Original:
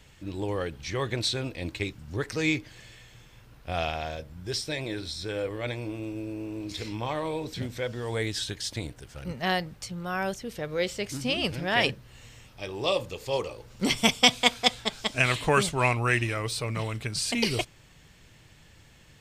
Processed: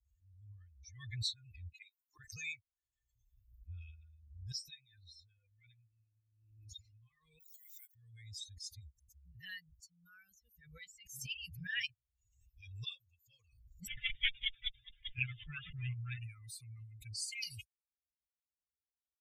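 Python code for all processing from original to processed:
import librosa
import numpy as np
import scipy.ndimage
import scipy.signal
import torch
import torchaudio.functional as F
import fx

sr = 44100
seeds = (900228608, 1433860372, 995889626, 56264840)

y = fx.chain(x, sr, fx.brickwall_highpass(low_hz=280.0),
    fx.peak_eq(hz=920.0, db=14.5, octaves=0.9), at=(1.73, 2.19))
y = fx.chain(y, sr, fx.highpass(hz=850.0, slope=12),
    fx.resample_bad(factor=4, down='none', up='hold'),
    fx.pre_swell(db_per_s=26.0), at=(7.4, 7.95))
y = fx.chain(y, sr, fx.lower_of_two(delay_ms=7.3),
    fx.overload_stage(gain_db=10.5),
    fx.resample_bad(factor=6, down='none', up='filtered'), at=(13.87, 16.18))
y = fx.bin_expand(y, sr, power=3.0)
y = scipy.signal.sosfilt(scipy.signal.cheby2(4, 50, [240.0, 950.0], 'bandstop', fs=sr, output='sos'), y)
y = fx.pre_swell(y, sr, db_per_s=63.0)
y = F.gain(torch.from_numpy(y), -5.5).numpy()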